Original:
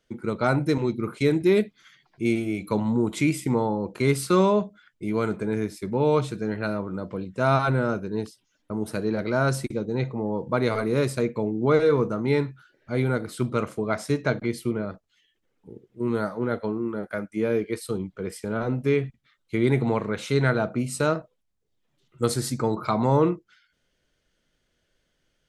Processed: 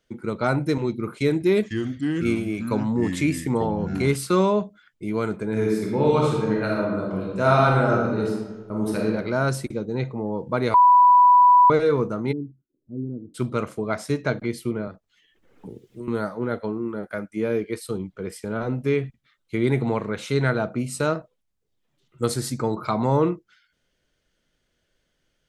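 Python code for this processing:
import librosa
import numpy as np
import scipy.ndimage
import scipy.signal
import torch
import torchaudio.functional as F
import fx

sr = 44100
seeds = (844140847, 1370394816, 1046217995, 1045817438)

y = fx.echo_pitch(x, sr, ms=483, semitones=-4, count=2, db_per_echo=-6.0, at=(1.14, 4.16))
y = fx.reverb_throw(y, sr, start_s=5.49, length_s=3.51, rt60_s=1.3, drr_db=-2.5)
y = fx.ladder_lowpass(y, sr, hz=340.0, resonance_pct=50, at=(12.31, 13.34), fade=0.02)
y = fx.band_squash(y, sr, depth_pct=100, at=(14.87, 16.08))
y = fx.edit(y, sr, fx.bleep(start_s=10.74, length_s=0.96, hz=987.0, db=-10.0), tone=tone)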